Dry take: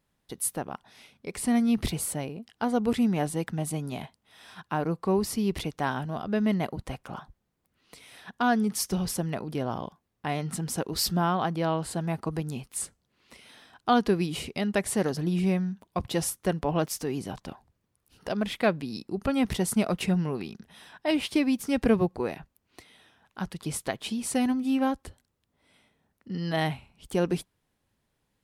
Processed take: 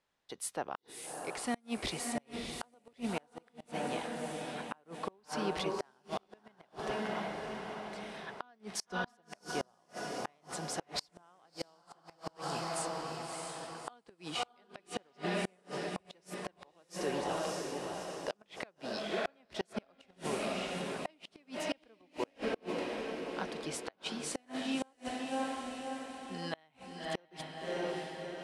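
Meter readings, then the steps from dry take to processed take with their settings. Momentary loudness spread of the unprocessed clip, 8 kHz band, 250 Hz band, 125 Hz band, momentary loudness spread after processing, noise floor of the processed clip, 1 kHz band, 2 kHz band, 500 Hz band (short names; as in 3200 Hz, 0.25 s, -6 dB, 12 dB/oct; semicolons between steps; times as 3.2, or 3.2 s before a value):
14 LU, -9.5 dB, -14.0 dB, -16.5 dB, 10 LU, -71 dBFS, -7.5 dB, -6.0 dB, -8.0 dB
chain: three-band isolator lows -14 dB, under 380 Hz, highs -23 dB, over 8000 Hz; diffused feedback echo 0.628 s, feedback 54%, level -4 dB; flipped gate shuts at -21 dBFS, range -34 dB; gain -1.5 dB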